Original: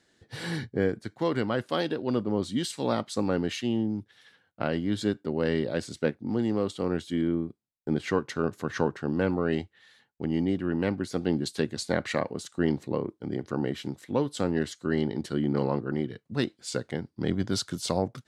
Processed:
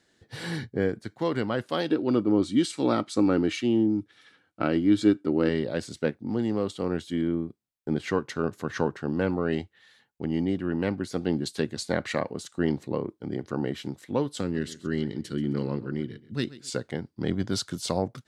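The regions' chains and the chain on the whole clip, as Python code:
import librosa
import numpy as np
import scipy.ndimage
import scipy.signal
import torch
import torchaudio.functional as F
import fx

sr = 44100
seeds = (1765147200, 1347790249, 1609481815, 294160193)

y = fx.chain(x, sr, fx.small_body(hz=(310.0, 1300.0, 2300.0), ring_ms=45, db=11),
    fx.resample_bad(factor=2, down='none', up='filtered'), at=(1.9, 5.49))
y = fx.chain(y, sr, fx.peak_eq(hz=770.0, db=-11.5, octaves=1.2),
    fx.echo_feedback(ms=132, feedback_pct=31, wet_db=-17.5), at=(14.41, 16.7))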